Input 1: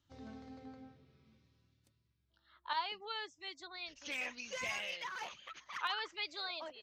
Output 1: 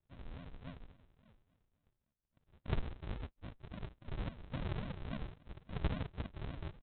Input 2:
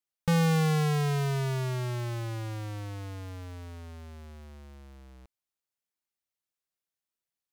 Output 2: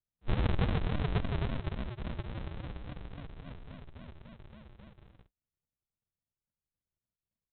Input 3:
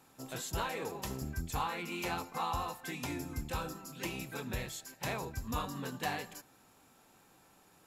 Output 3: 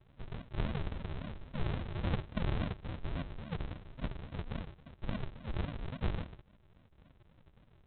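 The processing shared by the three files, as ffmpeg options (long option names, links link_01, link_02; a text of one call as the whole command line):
ffmpeg -i in.wav -af "afftfilt=real='re*between(b*sr/4096,200,2500)':imag='im*between(b*sr/4096,200,2500)':win_size=4096:overlap=0.75,aresample=8000,acrusher=samples=26:mix=1:aa=0.000001:lfo=1:lforange=15.6:lforate=3.6,aresample=44100,volume=3.5dB" out.wav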